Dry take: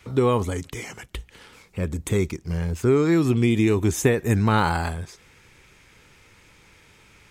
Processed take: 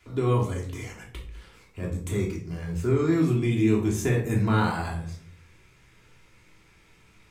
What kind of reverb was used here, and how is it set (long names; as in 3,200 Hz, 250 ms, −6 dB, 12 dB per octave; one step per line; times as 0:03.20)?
rectangular room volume 520 cubic metres, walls furnished, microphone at 3.1 metres
level −10 dB